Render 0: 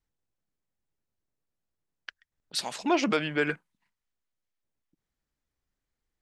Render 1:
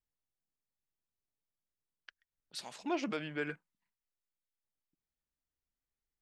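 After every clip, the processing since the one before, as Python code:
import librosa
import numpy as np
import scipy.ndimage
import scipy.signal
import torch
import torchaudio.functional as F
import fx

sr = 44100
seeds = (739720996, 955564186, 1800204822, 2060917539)

y = fx.hpss(x, sr, part='percussive', gain_db=-4)
y = F.gain(torch.from_numpy(y), -9.0).numpy()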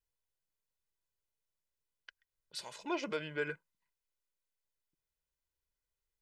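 y = x + 0.59 * np.pad(x, (int(2.0 * sr / 1000.0), 0))[:len(x)]
y = F.gain(torch.from_numpy(y), -1.0).numpy()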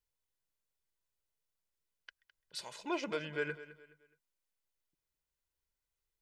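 y = fx.echo_feedback(x, sr, ms=210, feedback_pct=34, wet_db=-15.5)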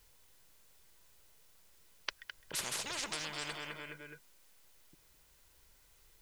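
y = fx.spectral_comp(x, sr, ratio=10.0)
y = F.gain(torch.from_numpy(y), 9.0).numpy()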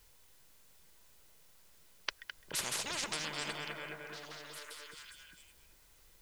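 y = fx.echo_stepped(x, sr, ms=397, hz=210.0, octaves=1.4, feedback_pct=70, wet_db=-1.5)
y = F.gain(torch.from_numpy(y), 1.5).numpy()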